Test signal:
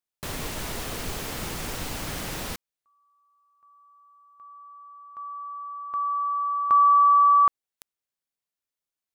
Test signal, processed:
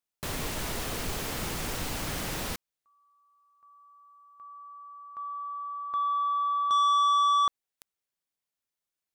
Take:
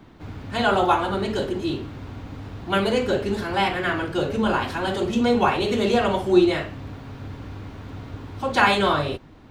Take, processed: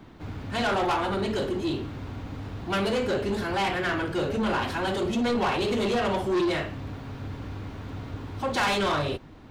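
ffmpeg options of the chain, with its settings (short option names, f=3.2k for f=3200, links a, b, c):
-af "asoftclip=type=tanh:threshold=-21.5dB"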